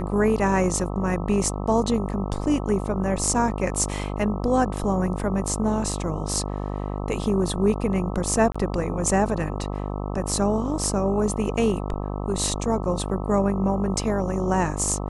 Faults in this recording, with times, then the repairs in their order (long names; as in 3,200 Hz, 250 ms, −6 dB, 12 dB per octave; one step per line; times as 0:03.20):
mains buzz 50 Hz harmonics 26 −29 dBFS
0:08.52–0:08.54: drop-out 25 ms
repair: hum removal 50 Hz, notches 26
repair the gap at 0:08.52, 25 ms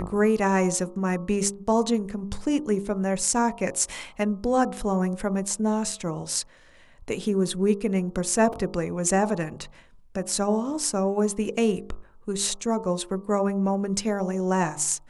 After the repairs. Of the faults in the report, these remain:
none of them is left